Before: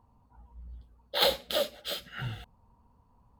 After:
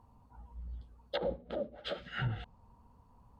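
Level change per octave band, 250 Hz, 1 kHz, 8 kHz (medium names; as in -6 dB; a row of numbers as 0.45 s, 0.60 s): +1.0 dB, -8.0 dB, under -25 dB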